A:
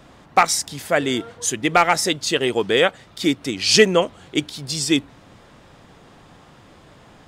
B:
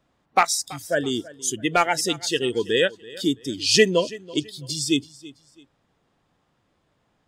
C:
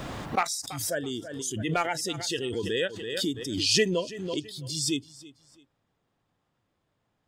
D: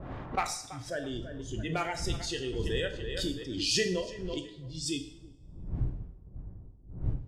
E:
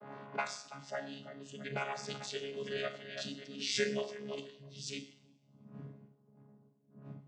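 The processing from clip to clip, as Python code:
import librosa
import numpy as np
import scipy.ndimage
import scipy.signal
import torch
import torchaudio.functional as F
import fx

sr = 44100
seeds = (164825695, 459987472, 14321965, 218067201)

y1 = fx.noise_reduce_blind(x, sr, reduce_db=18)
y1 = fx.echo_feedback(y1, sr, ms=331, feedback_pct=31, wet_db=-20.0)
y1 = F.gain(torch.from_numpy(y1), -3.0).numpy()
y2 = fx.peak_eq(y1, sr, hz=110.0, db=5.0, octaves=0.33)
y2 = fx.pre_swell(y2, sr, db_per_s=40.0)
y2 = F.gain(torch.from_numpy(y2), -8.5).numpy()
y3 = fx.dmg_wind(y2, sr, seeds[0], corner_hz=91.0, level_db=-35.0)
y3 = fx.env_lowpass(y3, sr, base_hz=420.0, full_db=-24.0)
y3 = fx.rev_double_slope(y3, sr, seeds[1], early_s=0.6, late_s=1.7, knee_db=-24, drr_db=5.5)
y3 = F.gain(torch.from_numpy(y3), -5.5).numpy()
y4 = fx.chord_vocoder(y3, sr, chord='bare fifth', root=49)
y4 = fx.highpass(y4, sr, hz=1400.0, slope=6)
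y4 = F.gain(torch.from_numpy(y4), 6.0).numpy()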